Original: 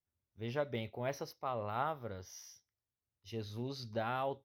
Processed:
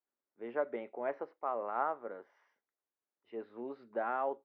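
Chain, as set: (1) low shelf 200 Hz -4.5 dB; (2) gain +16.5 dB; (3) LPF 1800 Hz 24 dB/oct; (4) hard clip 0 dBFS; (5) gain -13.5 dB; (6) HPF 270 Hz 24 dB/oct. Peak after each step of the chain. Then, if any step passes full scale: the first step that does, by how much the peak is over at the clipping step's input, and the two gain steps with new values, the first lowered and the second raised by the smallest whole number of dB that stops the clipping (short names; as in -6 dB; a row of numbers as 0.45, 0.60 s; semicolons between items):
-21.5, -5.0, -5.5, -5.5, -19.0, -19.0 dBFS; no overload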